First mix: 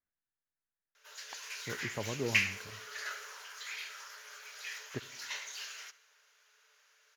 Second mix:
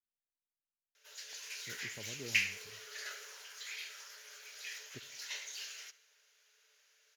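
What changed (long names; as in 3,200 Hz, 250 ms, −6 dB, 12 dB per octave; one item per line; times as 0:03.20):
speech −10.5 dB
master: add parametric band 1,100 Hz −10 dB 1.3 octaves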